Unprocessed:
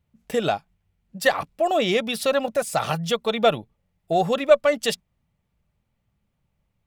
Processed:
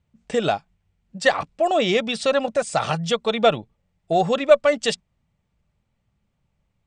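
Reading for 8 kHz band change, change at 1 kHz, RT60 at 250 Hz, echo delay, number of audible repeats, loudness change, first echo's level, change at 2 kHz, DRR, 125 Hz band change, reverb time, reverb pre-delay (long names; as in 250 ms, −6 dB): 0.0 dB, +1.5 dB, no reverb audible, no echo audible, no echo audible, +1.5 dB, no echo audible, +1.5 dB, no reverb audible, +1.5 dB, no reverb audible, no reverb audible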